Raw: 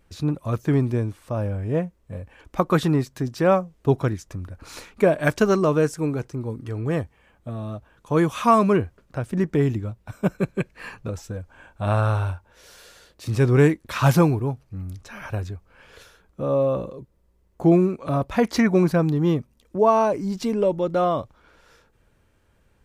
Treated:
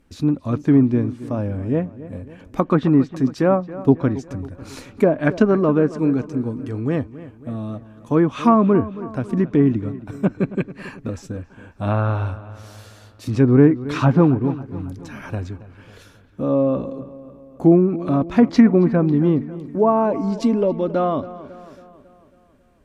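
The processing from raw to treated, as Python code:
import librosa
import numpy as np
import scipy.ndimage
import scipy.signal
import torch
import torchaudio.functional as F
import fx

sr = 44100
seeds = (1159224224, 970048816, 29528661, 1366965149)

p1 = fx.env_lowpass_down(x, sr, base_hz=1400.0, full_db=-13.5)
p2 = fx.peak_eq(p1, sr, hz=260.0, db=11.5, octaves=0.55)
y = p2 + fx.echo_wet_lowpass(p2, sr, ms=274, feedback_pct=53, hz=3200.0, wet_db=-16.0, dry=0)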